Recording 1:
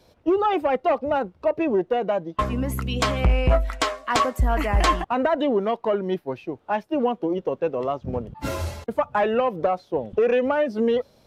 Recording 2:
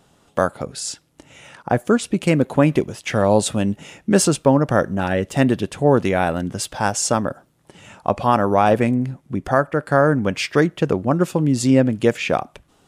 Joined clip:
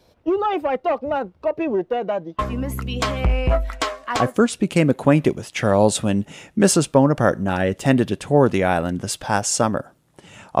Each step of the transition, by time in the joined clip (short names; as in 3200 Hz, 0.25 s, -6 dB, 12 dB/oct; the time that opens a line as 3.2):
recording 1
4.2 switch to recording 2 from 1.71 s, crossfade 0.44 s equal-power